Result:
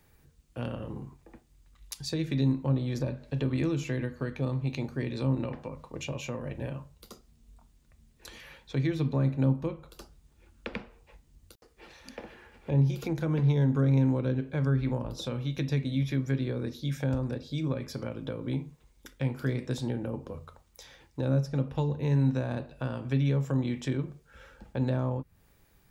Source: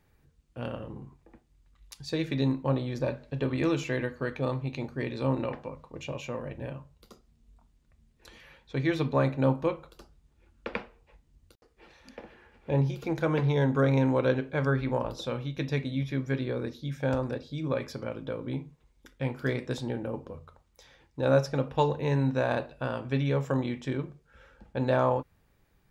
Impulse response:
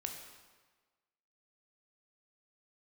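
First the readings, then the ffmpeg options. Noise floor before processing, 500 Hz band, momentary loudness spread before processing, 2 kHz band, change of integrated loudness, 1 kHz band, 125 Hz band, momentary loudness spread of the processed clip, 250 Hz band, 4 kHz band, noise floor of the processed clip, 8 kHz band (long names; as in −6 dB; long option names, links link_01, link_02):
−67 dBFS, −6.0 dB, 15 LU, −6.0 dB, −0.5 dB, −9.0 dB, +2.5 dB, 17 LU, +0.5 dB, −1.0 dB, −64 dBFS, can't be measured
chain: -filter_complex "[0:a]acrossover=split=290[link_01][link_02];[link_02]acompressor=threshold=-40dB:ratio=6[link_03];[link_01][link_03]amix=inputs=2:normalize=0,highshelf=frequency=5300:gain=8.5,volume=3dB"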